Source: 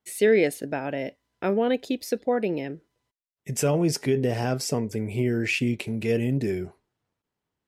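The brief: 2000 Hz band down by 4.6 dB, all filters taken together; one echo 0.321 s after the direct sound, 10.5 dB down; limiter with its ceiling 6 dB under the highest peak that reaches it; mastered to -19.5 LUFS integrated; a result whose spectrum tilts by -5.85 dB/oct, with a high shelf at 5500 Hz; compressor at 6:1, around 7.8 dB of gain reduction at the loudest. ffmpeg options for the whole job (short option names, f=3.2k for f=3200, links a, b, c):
-af "equalizer=f=2k:t=o:g=-4.5,highshelf=f=5.5k:g=-8,acompressor=threshold=-24dB:ratio=6,alimiter=limit=-21dB:level=0:latency=1,aecho=1:1:321:0.299,volume=12dB"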